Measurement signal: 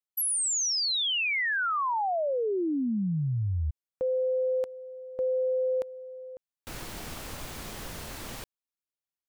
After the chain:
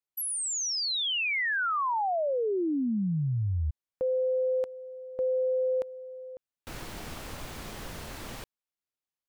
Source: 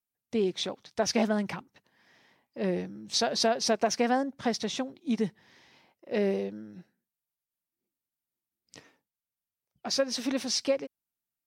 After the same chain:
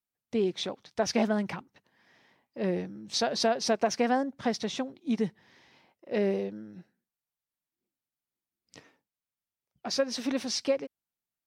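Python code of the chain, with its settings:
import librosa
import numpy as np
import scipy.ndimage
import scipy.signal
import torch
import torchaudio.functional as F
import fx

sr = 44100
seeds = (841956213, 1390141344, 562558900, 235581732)

y = fx.high_shelf(x, sr, hz=4900.0, db=-5.0)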